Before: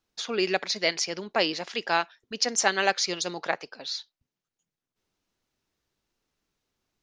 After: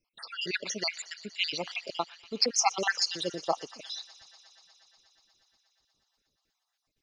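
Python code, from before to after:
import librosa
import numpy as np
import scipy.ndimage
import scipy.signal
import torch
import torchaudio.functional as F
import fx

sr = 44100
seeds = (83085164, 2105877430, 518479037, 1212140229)

y = fx.spec_dropout(x, sr, seeds[0], share_pct=68)
y = fx.echo_wet_highpass(y, sr, ms=120, feedback_pct=84, hz=1800.0, wet_db=-18.5)
y = y * librosa.db_to_amplitude(1.5)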